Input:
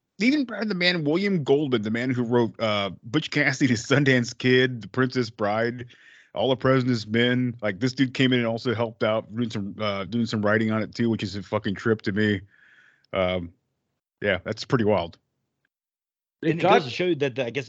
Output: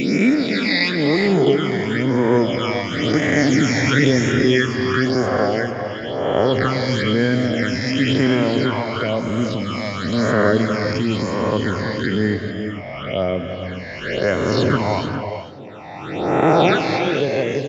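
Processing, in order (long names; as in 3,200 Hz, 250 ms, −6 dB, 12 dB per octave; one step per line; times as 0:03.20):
peak hold with a rise ahead of every peak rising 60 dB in 2.03 s
single-tap delay 438 ms −17.5 dB
all-pass phaser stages 8, 0.99 Hz, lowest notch 390–4,600 Hz
reverb whose tail is shaped and stops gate 470 ms rising, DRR 6.5 dB
level +2 dB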